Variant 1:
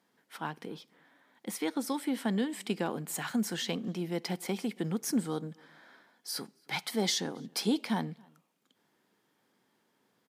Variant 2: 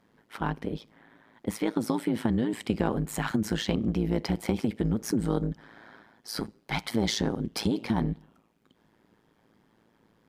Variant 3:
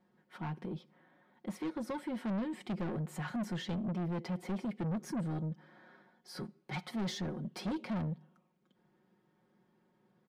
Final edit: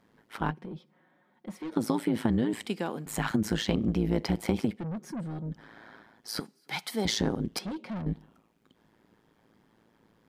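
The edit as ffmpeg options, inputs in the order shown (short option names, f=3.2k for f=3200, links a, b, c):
-filter_complex "[2:a]asplit=3[a][b][c];[0:a]asplit=2[d][e];[1:a]asplit=6[f][g][h][i][j][k];[f]atrim=end=0.512[l];[a]atrim=start=0.508:end=1.722[m];[g]atrim=start=1.718:end=2.662[n];[d]atrim=start=2.658:end=3.062[o];[h]atrim=start=3.058:end=4.81[p];[b]atrim=start=4.65:end=5.6[q];[i]atrim=start=5.44:end=6.402[r];[e]atrim=start=6.398:end=7.052[s];[j]atrim=start=7.048:end=7.592[t];[c]atrim=start=7.588:end=8.062[u];[k]atrim=start=8.058[v];[l][m]acrossfade=d=0.004:c1=hsin:c2=hsin[w];[w][n]acrossfade=d=0.004:c1=hsin:c2=hsin[x];[x][o]acrossfade=d=0.004:c1=hsin:c2=hsin[y];[y][p]acrossfade=d=0.004:c1=hsin:c2=hsin[z];[z][q]acrossfade=d=0.16:c1=tri:c2=tri[aa];[aa][r]acrossfade=d=0.16:c1=tri:c2=tri[ab];[ab][s]acrossfade=d=0.004:c1=hsin:c2=hsin[ac];[ac][t]acrossfade=d=0.004:c1=hsin:c2=hsin[ad];[ad][u]acrossfade=d=0.004:c1=hsin:c2=hsin[ae];[ae][v]acrossfade=d=0.004:c1=hsin:c2=hsin"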